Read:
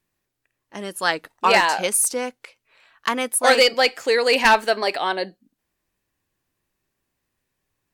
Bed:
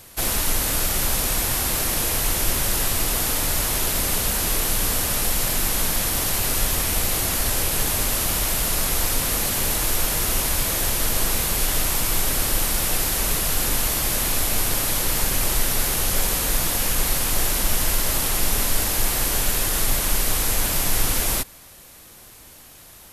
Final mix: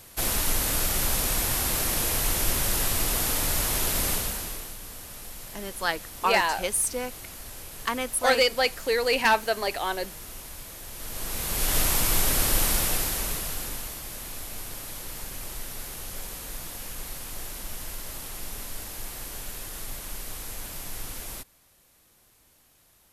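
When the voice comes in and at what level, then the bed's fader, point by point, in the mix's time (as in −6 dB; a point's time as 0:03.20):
4.80 s, −6.0 dB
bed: 0:04.10 −3.5 dB
0:04.78 −19 dB
0:10.86 −19 dB
0:11.77 −1.5 dB
0:12.72 −1.5 dB
0:14.02 −15.5 dB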